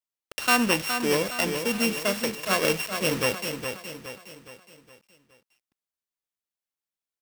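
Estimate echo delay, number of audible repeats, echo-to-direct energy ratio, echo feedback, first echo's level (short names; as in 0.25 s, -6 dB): 0.416 s, 4, -6.5 dB, 45%, -7.5 dB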